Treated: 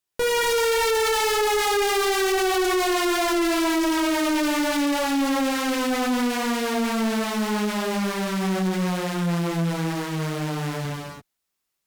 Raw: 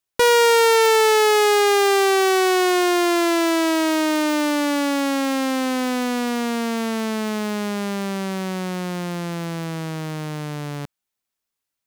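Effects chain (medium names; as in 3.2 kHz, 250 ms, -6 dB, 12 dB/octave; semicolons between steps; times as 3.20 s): gated-style reverb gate 370 ms flat, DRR -4 dB; valve stage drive 20 dB, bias 0.5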